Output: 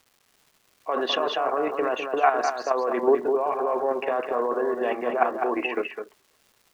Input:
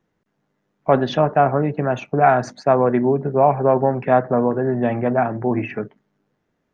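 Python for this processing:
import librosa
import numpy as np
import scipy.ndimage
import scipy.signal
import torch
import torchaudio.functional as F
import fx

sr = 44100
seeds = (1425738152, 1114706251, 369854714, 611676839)

p1 = scipy.signal.sosfilt(scipy.signal.butter(4, 350.0, 'highpass', fs=sr, output='sos'), x)
p2 = fx.high_shelf(p1, sr, hz=2500.0, db=6.5)
p3 = fx.small_body(p2, sr, hz=(560.0, 1100.0, 2800.0), ring_ms=30, db=12)
p4 = fx.over_compress(p3, sr, threshold_db=-14.0, ratio=-0.5)
p5 = p3 + (p4 * librosa.db_to_amplitude(0.0))
p6 = scipy.signal.sosfilt(scipy.signal.butter(2, 5200.0, 'lowpass', fs=sr, output='sos'), p5)
p7 = fx.peak_eq(p6, sr, hz=570.0, db=-15.0, octaves=0.21)
p8 = fx.level_steps(p7, sr, step_db=9)
p9 = fx.dmg_crackle(p8, sr, seeds[0], per_s=420.0, level_db=-41.0)
p10 = p9 + fx.echo_single(p9, sr, ms=205, db=-6.5, dry=0)
y = p10 * librosa.db_to_amplitude(-7.0)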